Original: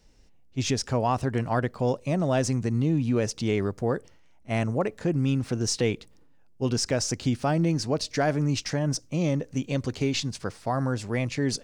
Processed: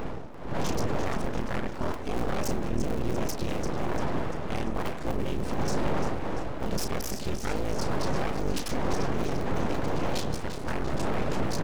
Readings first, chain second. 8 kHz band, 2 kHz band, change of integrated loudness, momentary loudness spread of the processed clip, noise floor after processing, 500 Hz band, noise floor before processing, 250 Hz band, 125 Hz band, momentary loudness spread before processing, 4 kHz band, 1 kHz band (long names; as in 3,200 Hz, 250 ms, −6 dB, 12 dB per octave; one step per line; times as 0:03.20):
−6.5 dB, −2.0 dB, −4.5 dB, 4 LU, −34 dBFS, −3.5 dB, −54 dBFS, −5.0 dB, −6.5 dB, 5 LU, −5.5 dB, −0.5 dB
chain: sub-harmonics by changed cycles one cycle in 3, muted
wind on the microphone 460 Hz −25 dBFS
parametric band 69 Hz +10.5 dB 1.1 octaves
hum removal 142.7 Hz, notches 28
brickwall limiter −18.5 dBFS, peak gain reduction 16 dB
upward compression, threshold −36 dBFS
double-tracking delay 34 ms −10 dB
on a send: echo with a time of its own for lows and highs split 700 Hz, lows 101 ms, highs 344 ms, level −10 dB
on the sum: full-wave rectification